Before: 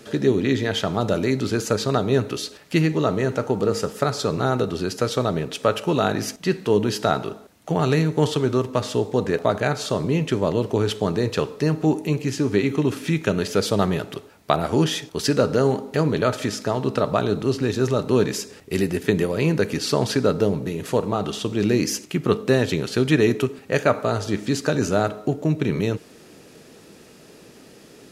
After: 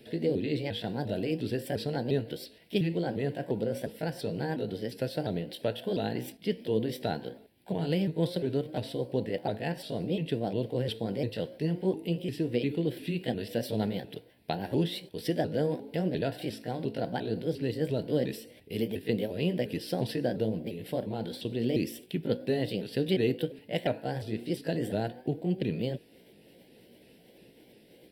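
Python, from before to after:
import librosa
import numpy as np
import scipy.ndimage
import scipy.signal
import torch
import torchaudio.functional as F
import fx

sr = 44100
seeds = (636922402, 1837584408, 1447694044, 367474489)

y = fx.pitch_ramps(x, sr, semitones=4.0, every_ms=351)
y = fx.fixed_phaser(y, sr, hz=2900.0, stages=4)
y = fx.dynamic_eq(y, sr, hz=2200.0, q=6.6, threshold_db=-51.0, ratio=4.0, max_db=-6)
y = y * librosa.db_to_amplitude(-7.0)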